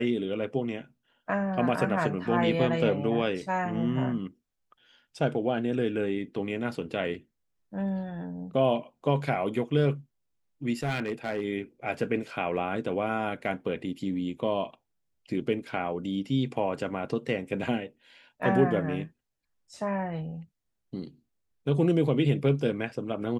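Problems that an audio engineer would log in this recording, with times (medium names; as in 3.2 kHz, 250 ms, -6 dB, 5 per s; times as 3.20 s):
10.83–11.44 s: clipped -24.5 dBFS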